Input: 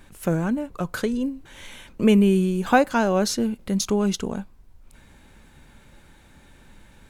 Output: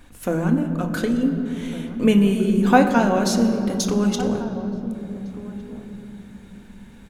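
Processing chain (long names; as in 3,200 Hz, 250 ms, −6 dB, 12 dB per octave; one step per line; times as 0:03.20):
slap from a distant wall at 250 metres, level −15 dB
on a send at −3.5 dB: convolution reverb RT60 3.5 s, pre-delay 3 ms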